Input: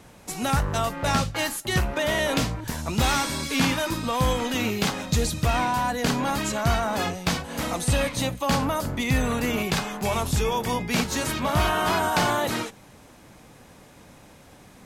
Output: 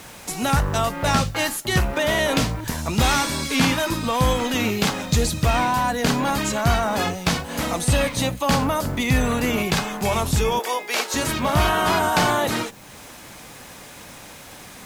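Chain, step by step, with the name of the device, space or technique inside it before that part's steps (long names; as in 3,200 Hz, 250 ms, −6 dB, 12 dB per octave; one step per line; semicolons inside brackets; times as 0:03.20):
0:10.59–0:11.14: high-pass filter 410 Hz 24 dB per octave
noise-reduction cassette on a plain deck (one half of a high-frequency compander encoder only; tape wow and flutter 23 cents; white noise bed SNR 31 dB)
level +3.5 dB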